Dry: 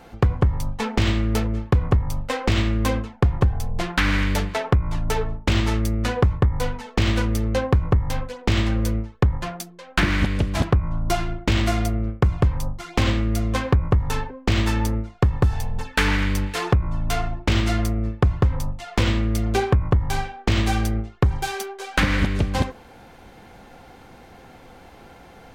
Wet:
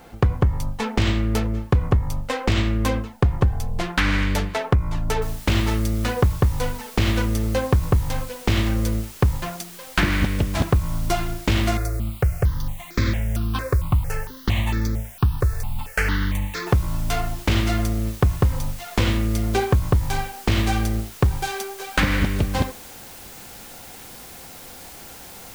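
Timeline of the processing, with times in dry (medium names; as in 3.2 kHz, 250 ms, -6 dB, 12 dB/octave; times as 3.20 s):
5.22 s: noise floor step -61 dB -42 dB
11.77–16.67 s: stepped phaser 4.4 Hz 830–2900 Hz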